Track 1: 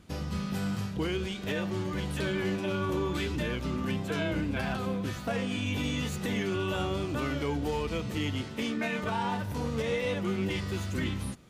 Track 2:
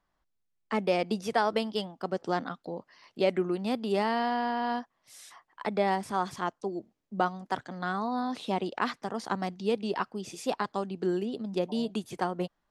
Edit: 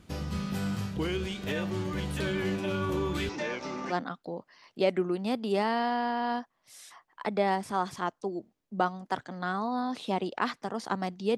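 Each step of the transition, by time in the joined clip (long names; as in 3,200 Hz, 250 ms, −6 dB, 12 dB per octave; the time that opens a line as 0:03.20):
track 1
0:03.29–0:03.95: loudspeaker in its box 320–6,500 Hz, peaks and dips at 580 Hz +3 dB, 840 Hz +8 dB, 2,100 Hz +4 dB, 3,100 Hz −6 dB, 5,700 Hz +9 dB
0:03.91: continue with track 2 from 0:02.31, crossfade 0.08 s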